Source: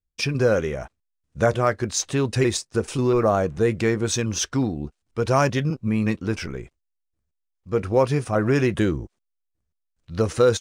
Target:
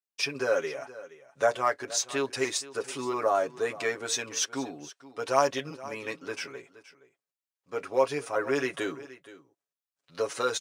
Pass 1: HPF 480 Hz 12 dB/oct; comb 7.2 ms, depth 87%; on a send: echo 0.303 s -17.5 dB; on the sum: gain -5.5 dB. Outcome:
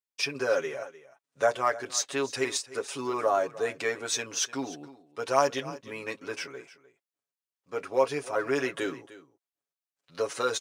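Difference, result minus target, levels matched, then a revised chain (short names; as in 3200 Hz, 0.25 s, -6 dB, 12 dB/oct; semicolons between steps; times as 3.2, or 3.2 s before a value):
echo 0.169 s early
HPF 480 Hz 12 dB/oct; comb 7.2 ms, depth 87%; on a send: echo 0.472 s -17.5 dB; on the sum: gain -5.5 dB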